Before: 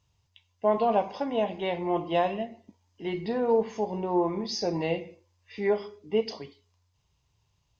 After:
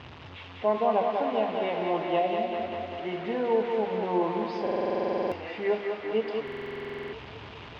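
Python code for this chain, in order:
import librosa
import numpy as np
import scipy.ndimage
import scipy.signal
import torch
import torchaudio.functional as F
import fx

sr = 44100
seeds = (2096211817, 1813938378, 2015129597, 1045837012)

y = fx.delta_mod(x, sr, bps=64000, step_db=-33.0)
y = fx.highpass(y, sr, hz=150.0, slope=6)
y = fx.spec_erase(y, sr, start_s=2.19, length_s=0.33, low_hz=840.0, high_hz=1900.0)
y = scipy.signal.sosfilt(scipy.signal.butter(4, 3100.0, 'lowpass', fs=sr, output='sos'), y)
y = fx.hum_notches(y, sr, base_hz=50, count=4)
y = fx.echo_thinned(y, sr, ms=196, feedback_pct=74, hz=210.0, wet_db=-4)
y = fx.buffer_glitch(y, sr, at_s=(4.62, 6.43), block=2048, repeats=14)
y = y * 10.0 ** (-1.0 / 20.0)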